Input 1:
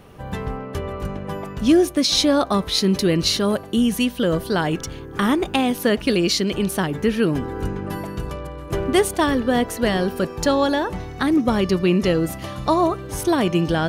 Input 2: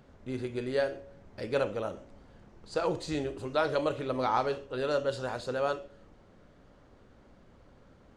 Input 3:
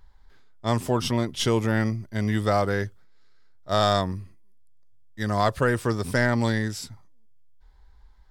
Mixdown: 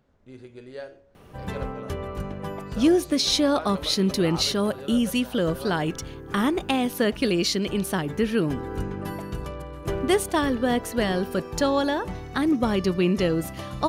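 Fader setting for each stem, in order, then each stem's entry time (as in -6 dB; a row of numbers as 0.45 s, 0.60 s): -4.0 dB, -9.0 dB, mute; 1.15 s, 0.00 s, mute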